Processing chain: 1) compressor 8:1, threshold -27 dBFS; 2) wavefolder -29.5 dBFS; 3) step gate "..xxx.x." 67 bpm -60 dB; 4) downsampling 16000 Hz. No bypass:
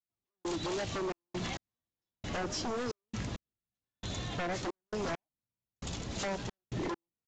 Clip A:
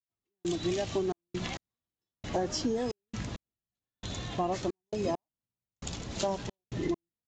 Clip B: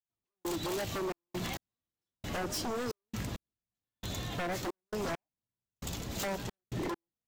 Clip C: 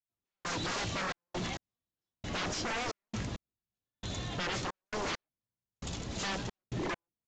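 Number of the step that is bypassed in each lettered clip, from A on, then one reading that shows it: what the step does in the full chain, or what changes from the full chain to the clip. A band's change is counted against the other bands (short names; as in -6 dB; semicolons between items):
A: 2, distortion -3 dB; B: 4, 8 kHz band +1.5 dB; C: 1, mean gain reduction 3.0 dB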